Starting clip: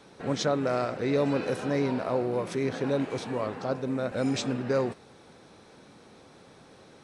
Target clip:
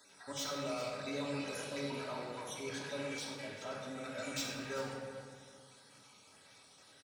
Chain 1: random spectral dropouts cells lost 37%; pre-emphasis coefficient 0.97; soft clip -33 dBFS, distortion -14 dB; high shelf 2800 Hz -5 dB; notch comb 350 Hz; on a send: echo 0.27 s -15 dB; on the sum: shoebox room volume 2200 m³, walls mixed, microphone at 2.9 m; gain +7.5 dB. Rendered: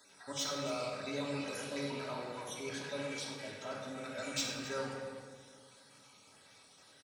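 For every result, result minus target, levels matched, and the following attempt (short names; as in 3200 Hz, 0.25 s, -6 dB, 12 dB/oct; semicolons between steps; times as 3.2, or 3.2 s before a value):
echo 0.121 s early; soft clip: distortion -6 dB
random spectral dropouts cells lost 37%; pre-emphasis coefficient 0.97; soft clip -33 dBFS, distortion -14 dB; high shelf 2800 Hz -5 dB; notch comb 350 Hz; on a send: echo 0.391 s -15 dB; on the sum: shoebox room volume 2200 m³, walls mixed, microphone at 2.9 m; gain +7.5 dB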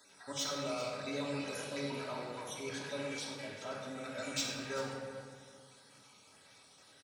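soft clip: distortion -6 dB
random spectral dropouts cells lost 37%; pre-emphasis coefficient 0.97; soft clip -40 dBFS, distortion -8 dB; high shelf 2800 Hz -5 dB; notch comb 350 Hz; on a send: echo 0.391 s -15 dB; on the sum: shoebox room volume 2200 m³, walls mixed, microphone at 2.9 m; gain +7.5 dB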